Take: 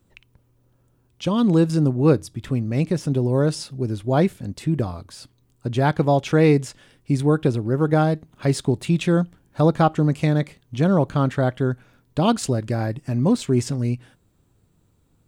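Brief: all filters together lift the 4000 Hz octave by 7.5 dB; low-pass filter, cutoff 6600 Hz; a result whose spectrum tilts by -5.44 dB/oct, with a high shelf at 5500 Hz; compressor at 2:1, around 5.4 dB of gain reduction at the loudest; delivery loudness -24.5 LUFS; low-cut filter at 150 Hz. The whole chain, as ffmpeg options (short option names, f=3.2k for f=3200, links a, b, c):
-af "highpass=150,lowpass=6.6k,equalizer=f=4k:t=o:g=8,highshelf=f=5.5k:g=5.5,acompressor=threshold=-21dB:ratio=2,volume=1dB"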